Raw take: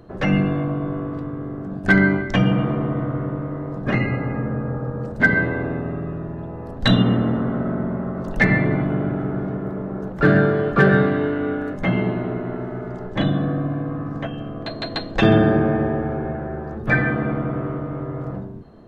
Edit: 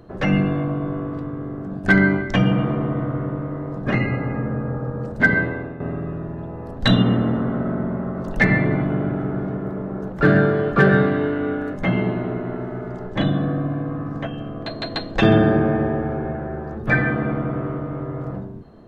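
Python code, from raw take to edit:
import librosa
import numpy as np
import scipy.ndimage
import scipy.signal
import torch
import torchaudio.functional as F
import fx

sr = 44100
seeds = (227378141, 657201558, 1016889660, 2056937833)

y = fx.edit(x, sr, fx.fade_out_to(start_s=5.35, length_s=0.45, floor_db=-11.0), tone=tone)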